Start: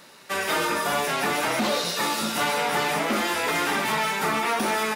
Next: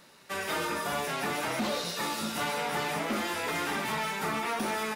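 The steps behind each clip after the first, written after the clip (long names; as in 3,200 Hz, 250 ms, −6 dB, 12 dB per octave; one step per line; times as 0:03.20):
low-shelf EQ 140 Hz +8.5 dB
level −7.5 dB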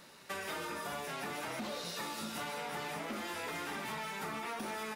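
downward compressor 6 to 1, threshold −38 dBFS, peak gain reduction 10.5 dB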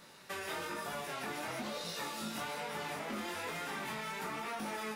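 chorus effect 1.1 Hz, delay 18.5 ms, depth 5.1 ms
level +3 dB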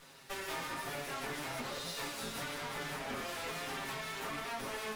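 lower of the sound and its delayed copy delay 7.4 ms
level +1.5 dB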